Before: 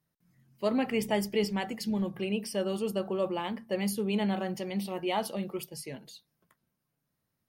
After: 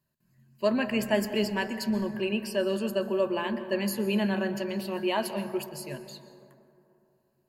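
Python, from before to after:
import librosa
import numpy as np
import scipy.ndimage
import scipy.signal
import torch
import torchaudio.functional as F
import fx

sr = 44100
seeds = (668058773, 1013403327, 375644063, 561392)

y = fx.ripple_eq(x, sr, per_octave=1.4, db=10)
y = fx.rev_plate(y, sr, seeds[0], rt60_s=2.9, hf_ratio=0.3, predelay_ms=110, drr_db=10.5)
y = fx.dynamic_eq(y, sr, hz=1600.0, q=1.6, threshold_db=-50.0, ratio=4.0, max_db=5)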